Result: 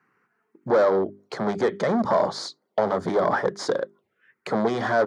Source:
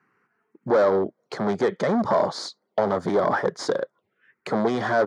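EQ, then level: notches 50/100/150/200/250/300/350/400 Hz; 0.0 dB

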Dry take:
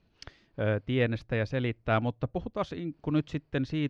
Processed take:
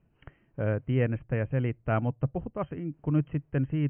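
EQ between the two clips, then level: brick-wall FIR low-pass 3200 Hz; air absorption 470 m; bell 140 Hz +7.5 dB 0.39 oct; 0.0 dB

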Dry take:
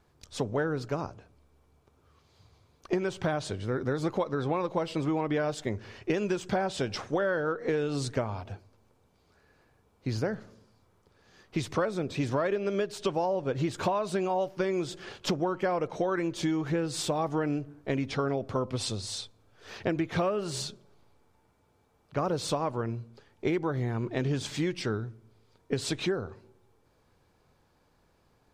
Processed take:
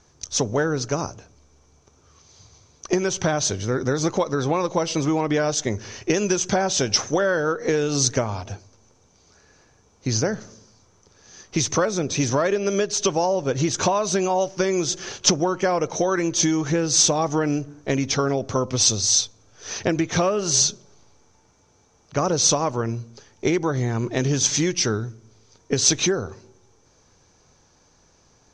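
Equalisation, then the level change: synth low-pass 6100 Hz, resonance Q 12; +7.0 dB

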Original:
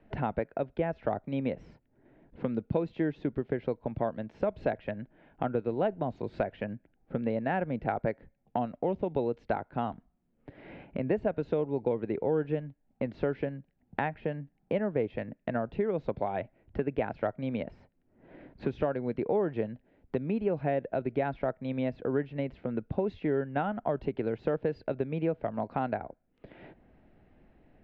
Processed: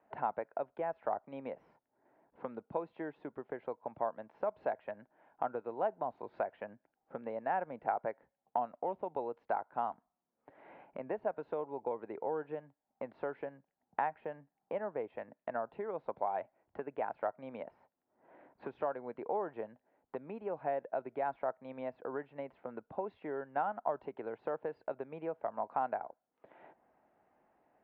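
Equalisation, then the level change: band-pass 950 Hz, Q 2; +1.5 dB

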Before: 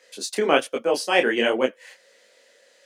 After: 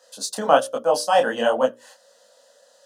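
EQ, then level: bell 520 Hz +6 dB 1.2 oct; notches 60/120/180/240/300/360/420/480/540/600 Hz; fixed phaser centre 920 Hz, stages 4; +4.0 dB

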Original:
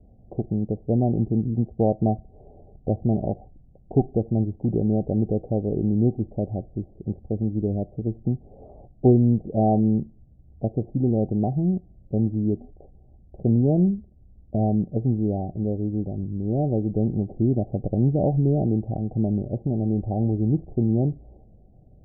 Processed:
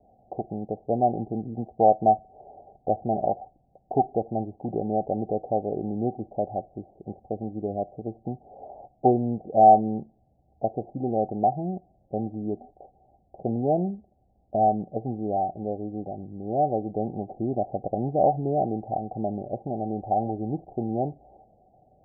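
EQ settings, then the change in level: synth low-pass 780 Hz, resonance Q 4.9; tilt +4 dB/oct; 0.0 dB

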